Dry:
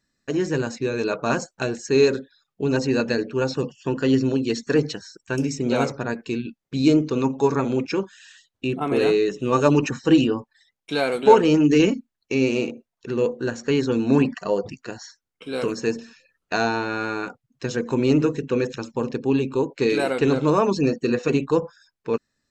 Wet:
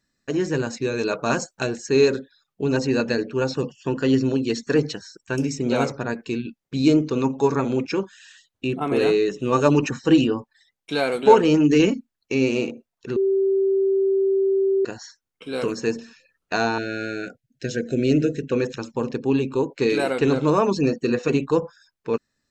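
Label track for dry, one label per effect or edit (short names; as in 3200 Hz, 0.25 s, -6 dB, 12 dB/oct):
0.730000	1.670000	high shelf 4300 Hz +5 dB
13.160000	14.850000	bleep 388 Hz -16.5 dBFS
16.780000	18.520000	elliptic band-stop 670–1500 Hz, stop band 60 dB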